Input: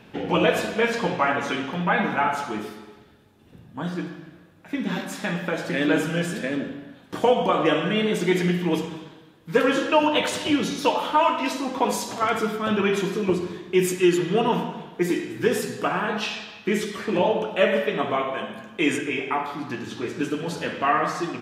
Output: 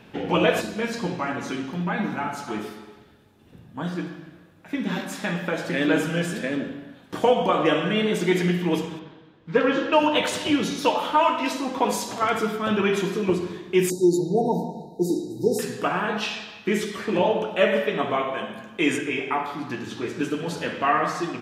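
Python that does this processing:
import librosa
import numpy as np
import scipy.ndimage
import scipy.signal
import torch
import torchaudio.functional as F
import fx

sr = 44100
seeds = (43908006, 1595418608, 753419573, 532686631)

y = fx.spec_box(x, sr, start_s=0.61, length_s=1.87, low_hz=400.0, high_hz=3800.0, gain_db=-7)
y = fx.air_absorb(y, sr, metres=160.0, at=(8.99, 9.93))
y = fx.brickwall_bandstop(y, sr, low_hz=930.0, high_hz=3700.0, at=(13.9, 15.59))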